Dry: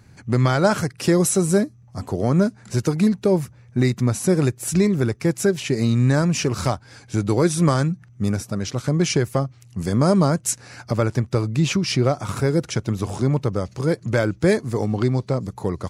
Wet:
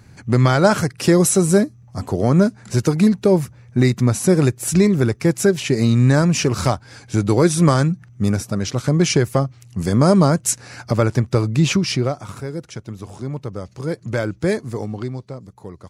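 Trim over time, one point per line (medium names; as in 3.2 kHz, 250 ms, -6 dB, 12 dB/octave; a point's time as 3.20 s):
11.78 s +3.5 dB
12.43 s -8.5 dB
13.15 s -8.5 dB
14.13 s -2 dB
14.68 s -2 dB
15.39 s -11 dB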